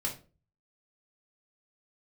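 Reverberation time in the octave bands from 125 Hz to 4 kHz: 0.65 s, 0.45 s, 0.40 s, 0.30 s, 0.25 s, 0.25 s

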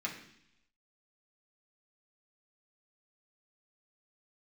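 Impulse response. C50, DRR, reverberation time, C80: 7.5 dB, -3.5 dB, 0.70 s, 10.5 dB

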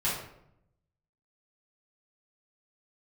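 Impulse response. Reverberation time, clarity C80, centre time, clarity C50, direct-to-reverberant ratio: 0.75 s, 6.5 dB, 48 ms, 2.5 dB, -9.5 dB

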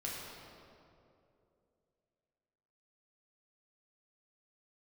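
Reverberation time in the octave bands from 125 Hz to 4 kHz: 2.9 s, 2.9 s, 3.1 s, 2.3 s, 1.8 s, 1.5 s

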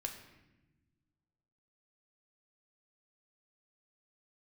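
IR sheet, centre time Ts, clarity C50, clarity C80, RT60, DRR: 23 ms, 7.5 dB, 9.5 dB, no single decay rate, 2.0 dB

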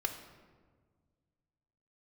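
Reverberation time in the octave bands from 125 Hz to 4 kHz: 2.5 s, 2.2 s, 1.8 s, 1.4 s, 1.1 s, 0.85 s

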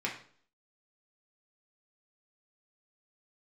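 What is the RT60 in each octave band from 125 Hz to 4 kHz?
0.55 s, 0.60 s, 0.55 s, 0.50 s, 0.45 s, 0.45 s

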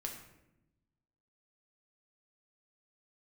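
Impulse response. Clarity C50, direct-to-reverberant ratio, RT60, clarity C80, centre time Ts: 6.0 dB, 1.0 dB, 0.90 s, 8.5 dB, 28 ms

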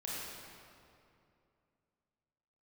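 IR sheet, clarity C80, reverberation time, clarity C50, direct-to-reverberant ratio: -2.0 dB, 2.6 s, -4.0 dB, -7.0 dB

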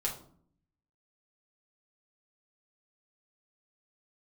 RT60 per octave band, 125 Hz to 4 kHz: 1.0 s, 0.90 s, 0.60 s, 0.50 s, 0.35 s, 0.35 s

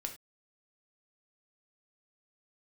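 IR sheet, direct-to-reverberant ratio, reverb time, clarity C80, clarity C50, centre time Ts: 3.5 dB, no single decay rate, 16.5 dB, 10.5 dB, 12 ms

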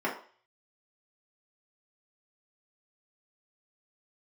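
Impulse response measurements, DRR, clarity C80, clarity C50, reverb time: -6.0 dB, 12.5 dB, 8.0 dB, 0.45 s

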